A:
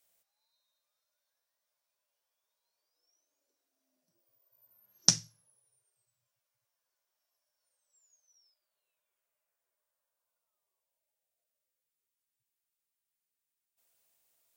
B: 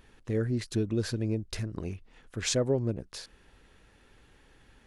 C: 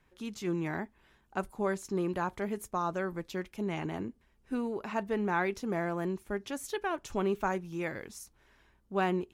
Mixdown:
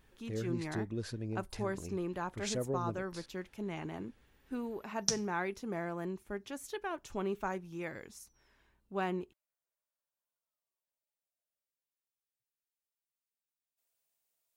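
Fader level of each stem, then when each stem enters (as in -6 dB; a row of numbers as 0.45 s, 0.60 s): -8.5 dB, -9.0 dB, -5.5 dB; 0.00 s, 0.00 s, 0.00 s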